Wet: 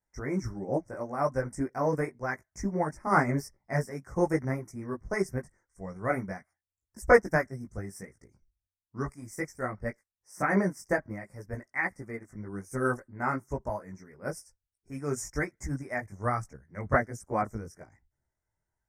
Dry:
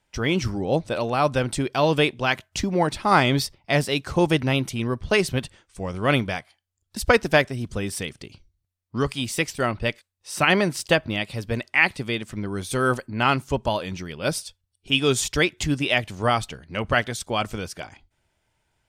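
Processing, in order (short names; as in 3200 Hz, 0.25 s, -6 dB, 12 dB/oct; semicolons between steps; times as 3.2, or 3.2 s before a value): chorus voices 6, 1.2 Hz, delay 18 ms, depth 3 ms; elliptic band-stop 2000–5500 Hz, stop band 40 dB; upward expander 1.5:1, over -38 dBFS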